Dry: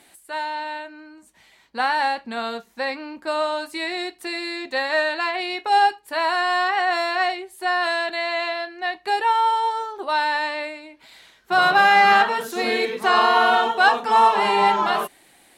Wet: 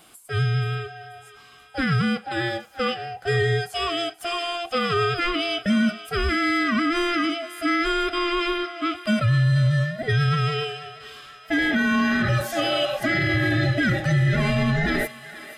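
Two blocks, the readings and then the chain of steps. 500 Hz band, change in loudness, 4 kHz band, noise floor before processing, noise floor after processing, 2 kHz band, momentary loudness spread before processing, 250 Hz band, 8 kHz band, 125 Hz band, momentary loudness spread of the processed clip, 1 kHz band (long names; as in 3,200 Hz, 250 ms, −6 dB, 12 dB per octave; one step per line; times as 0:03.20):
−1.5 dB, −2.5 dB, −1.0 dB, −56 dBFS, −48 dBFS, −3.0 dB, 13 LU, +10.5 dB, +0.5 dB, can't be measured, 8 LU, −11.0 dB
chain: frequency inversion band by band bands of 1,000 Hz
dynamic equaliser 130 Hz, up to +6 dB, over −35 dBFS, Q 1.5
brickwall limiter −15 dBFS, peak gain reduction 13.5 dB
feedback echo with a high-pass in the loop 482 ms, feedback 70%, high-pass 640 Hz, level −15 dB
level +1.5 dB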